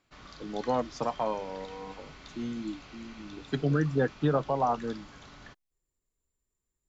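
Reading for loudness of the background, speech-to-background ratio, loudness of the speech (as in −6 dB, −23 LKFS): −49.0 LKFS, 18.0 dB, −31.0 LKFS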